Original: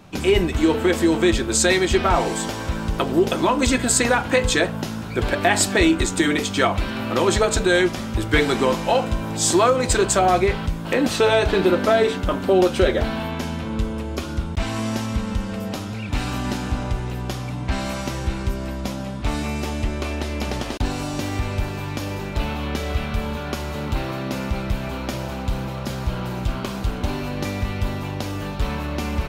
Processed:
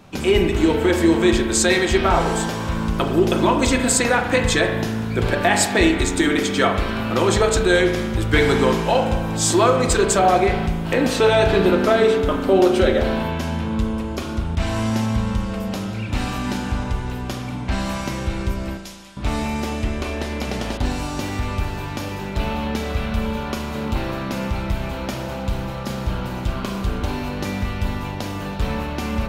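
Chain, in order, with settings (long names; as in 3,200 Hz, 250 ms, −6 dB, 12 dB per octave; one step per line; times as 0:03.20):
0:18.77–0:19.17: resonant band-pass 7,900 Hz, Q 0.52
spring reverb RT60 1.2 s, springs 36 ms, chirp 45 ms, DRR 5 dB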